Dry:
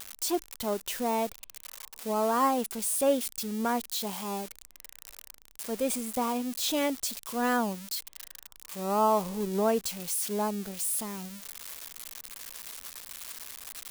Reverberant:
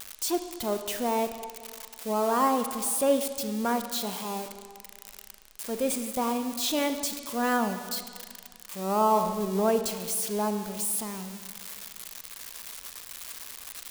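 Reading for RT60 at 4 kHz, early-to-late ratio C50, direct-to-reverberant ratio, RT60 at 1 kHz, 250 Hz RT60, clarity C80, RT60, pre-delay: 1.7 s, 9.0 dB, 8.0 dB, 1.9 s, 2.0 s, 10.0 dB, 1.9 s, 32 ms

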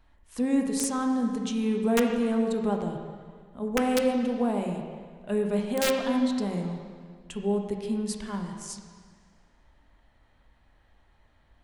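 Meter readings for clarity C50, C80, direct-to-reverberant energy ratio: 4.0 dB, 5.5 dB, 2.0 dB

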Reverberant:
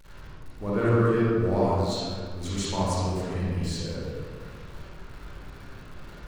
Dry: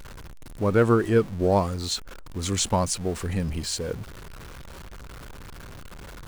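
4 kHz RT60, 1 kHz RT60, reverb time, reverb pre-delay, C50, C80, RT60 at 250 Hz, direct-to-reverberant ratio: 1.1 s, 1.6 s, 1.8 s, 36 ms, -5.5 dB, -2.0 dB, 2.2 s, -9.0 dB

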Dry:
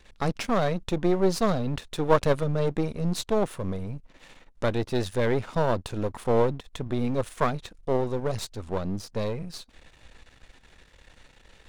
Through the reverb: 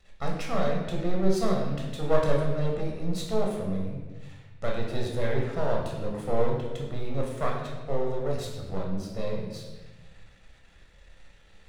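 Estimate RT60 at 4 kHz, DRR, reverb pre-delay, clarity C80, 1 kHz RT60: 0.95 s, -1.5 dB, 11 ms, 5.0 dB, 1.0 s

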